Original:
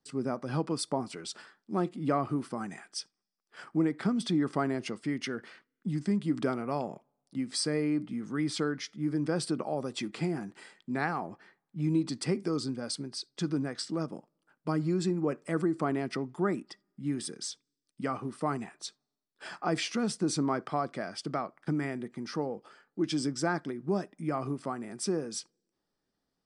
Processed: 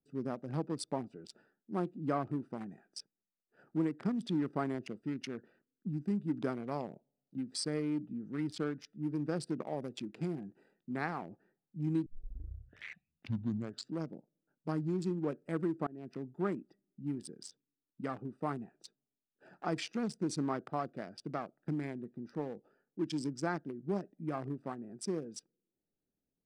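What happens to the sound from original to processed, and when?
0:12.06: tape start 1.91 s
0:15.87–0:16.45: fade in equal-power, from −22 dB
whole clip: adaptive Wiener filter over 41 samples; level −4.5 dB

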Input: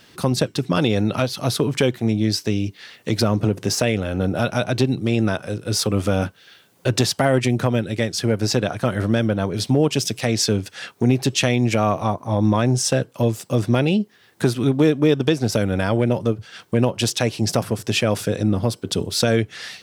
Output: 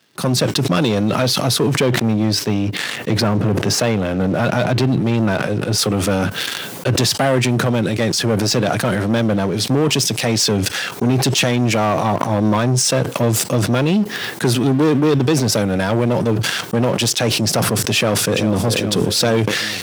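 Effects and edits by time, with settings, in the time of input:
0:01.80–0:05.78: bass and treble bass +2 dB, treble −8 dB
0:17.96–0:18.61: delay throw 400 ms, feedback 45%, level −10.5 dB
whole clip: leveller curve on the samples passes 3; high-pass filter 110 Hz 24 dB per octave; level that may fall only so fast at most 25 dB per second; level −5 dB

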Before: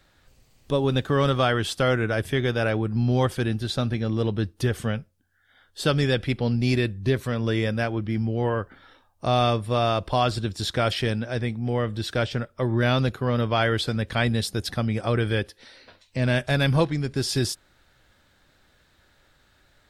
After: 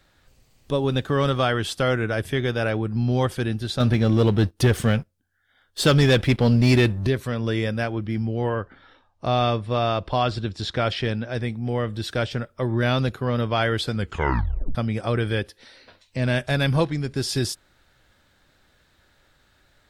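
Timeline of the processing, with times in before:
0:03.80–0:07.07: leveller curve on the samples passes 2
0:08.55–0:11.35: low-pass filter 5,100 Hz
0:13.95: tape stop 0.80 s

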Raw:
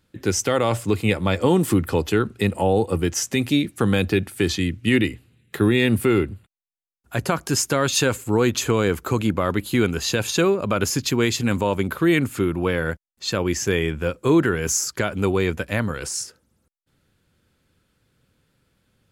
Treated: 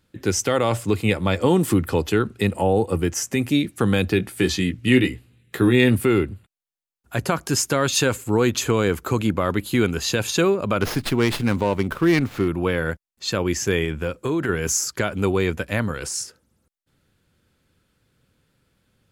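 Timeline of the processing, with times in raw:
0:02.48–0:03.55: dynamic equaliser 3,800 Hz, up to −7 dB, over −43 dBFS, Q 1.8
0:04.18–0:05.95: double-tracking delay 16 ms −6 dB
0:10.81–0:12.48: windowed peak hold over 5 samples
0:13.84–0:14.49: downward compressor, threshold −19 dBFS

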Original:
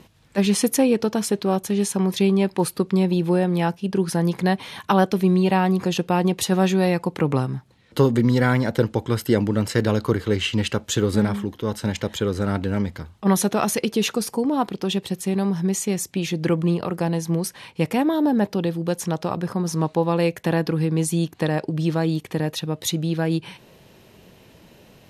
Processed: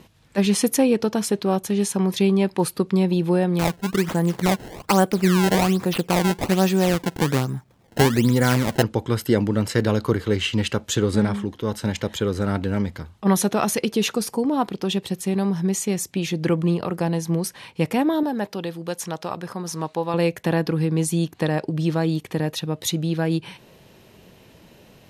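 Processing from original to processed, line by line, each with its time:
0:03.59–0:08.83: sample-and-hold swept by an LFO 21×, swing 160% 1.2 Hz
0:10.96–0:11.60: low-pass filter 11,000 Hz 24 dB per octave
0:18.23–0:20.14: low-shelf EQ 430 Hz −9.5 dB

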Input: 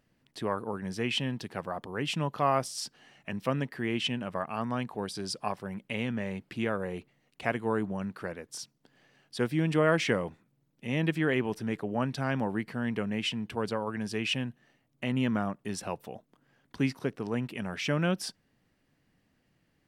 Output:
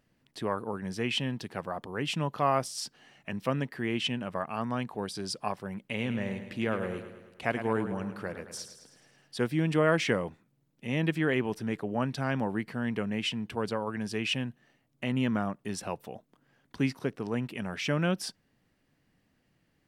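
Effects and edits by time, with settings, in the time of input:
0:05.86–0:09.41: repeating echo 107 ms, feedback 55%, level −10 dB

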